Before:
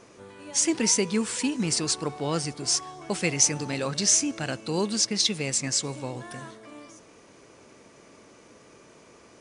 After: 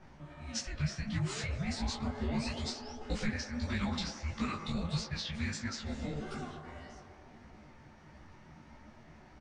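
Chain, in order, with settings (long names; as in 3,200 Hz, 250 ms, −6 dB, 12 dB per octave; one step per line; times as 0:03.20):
frequency shifter −360 Hz
downward compressor 5 to 1, threshold −29 dBFS, peak gain reduction 12.5 dB
sound drawn into the spectrogram rise, 0:01.03–0:02.94, 220–5,900 Hz −46 dBFS
treble cut that deepens with the level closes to 990 Hz, closed at −23.5 dBFS
high-shelf EQ 6,500 Hz +8 dB
double-tracking delay 15 ms −4 dB
phase-vocoder pitch shift with formants kept +2 semitones
parametric band 210 Hz +5.5 dB 0.32 octaves
on a send: delay with a band-pass on its return 109 ms, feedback 75%, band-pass 700 Hz, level −6 dB
on the sum: low-pass that shuts in the quiet parts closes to 2,200 Hz, open at −25 dBFS
micro pitch shift up and down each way 55 cents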